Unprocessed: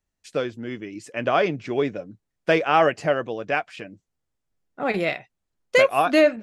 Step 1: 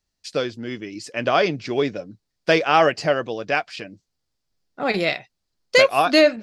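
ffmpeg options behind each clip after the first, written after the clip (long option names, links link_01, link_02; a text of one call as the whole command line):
ffmpeg -i in.wav -af "equalizer=frequency=4700:width_type=o:width=0.75:gain=12.5,volume=1.5dB" out.wav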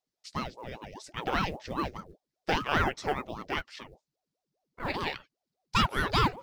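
ffmpeg -i in.wav -af "acrusher=bits=8:mode=log:mix=0:aa=0.000001,aeval=exprs='val(0)*sin(2*PI*450*n/s+450*0.7/5*sin(2*PI*5*n/s))':channel_layout=same,volume=-8dB" out.wav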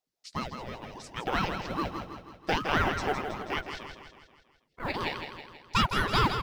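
ffmpeg -i in.wav -af "aecho=1:1:162|324|486|648|810|972:0.422|0.223|0.118|0.0628|0.0333|0.0176" out.wav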